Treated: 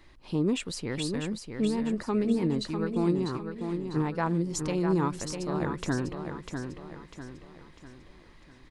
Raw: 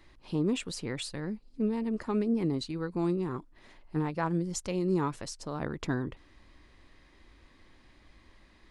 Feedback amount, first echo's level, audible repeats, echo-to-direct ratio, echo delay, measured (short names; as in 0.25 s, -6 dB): 43%, -6.5 dB, 4, -5.5 dB, 0.648 s